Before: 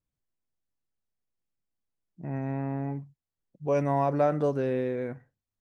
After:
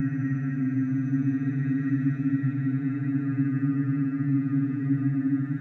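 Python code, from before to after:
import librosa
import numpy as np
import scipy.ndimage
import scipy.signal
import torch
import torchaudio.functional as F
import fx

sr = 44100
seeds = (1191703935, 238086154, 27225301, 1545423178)

y = fx.spec_repair(x, sr, seeds[0], start_s=2.05, length_s=0.92, low_hz=330.0, high_hz=1200.0, source='after')
y = fx.paulstretch(y, sr, seeds[1], factor=13.0, window_s=0.1, from_s=2.35)
y = fx.graphic_eq_15(y, sr, hz=(100, 1000, 2500), db=(-11, -9, -9))
y = F.gain(torch.from_numpy(y), 9.0).numpy()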